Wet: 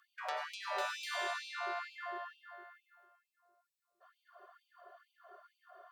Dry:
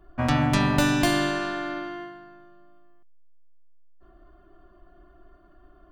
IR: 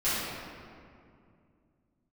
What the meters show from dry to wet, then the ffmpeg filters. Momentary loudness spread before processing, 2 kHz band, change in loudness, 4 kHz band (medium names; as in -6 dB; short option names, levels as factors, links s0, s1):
15 LU, -11.0 dB, -16.0 dB, -12.0 dB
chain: -filter_complex "[0:a]acrossover=split=5200[s0][s1];[s1]acompressor=threshold=0.00708:ratio=4:attack=1:release=60[s2];[s0][s2]amix=inputs=2:normalize=0,equalizer=f=2700:w=2.1:g=-3.5,acompressor=threshold=0.0126:ratio=3,asplit=2[s3][s4];[1:a]atrim=start_sample=2205,adelay=86[s5];[s4][s5]afir=irnorm=-1:irlink=0,volume=0.211[s6];[s3][s6]amix=inputs=2:normalize=0,afftfilt=real='re*gte(b*sr/1024,370*pow(2300/370,0.5+0.5*sin(2*PI*2.2*pts/sr)))':imag='im*gte(b*sr/1024,370*pow(2300/370,0.5+0.5*sin(2*PI*2.2*pts/sr)))':win_size=1024:overlap=0.75,volume=1.26"